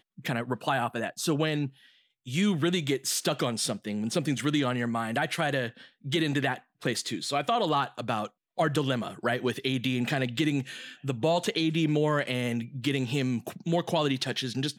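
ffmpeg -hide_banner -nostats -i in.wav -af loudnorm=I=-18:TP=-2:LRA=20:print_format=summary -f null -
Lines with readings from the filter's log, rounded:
Input Integrated:    -28.9 LUFS
Input True Peak:     -11.6 dBTP
Input LRA:             1.3 LU
Input Threshold:     -39.0 LUFS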